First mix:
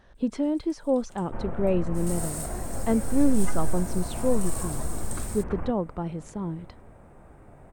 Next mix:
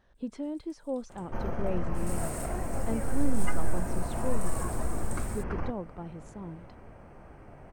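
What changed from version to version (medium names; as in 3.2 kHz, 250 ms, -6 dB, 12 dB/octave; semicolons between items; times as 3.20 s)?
speech -9.5 dB; first sound -6.5 dB; second sound: remove distance through air 330 m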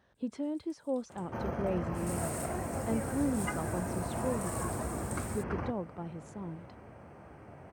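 master: add high-pass 71 Hz 24 dB/octave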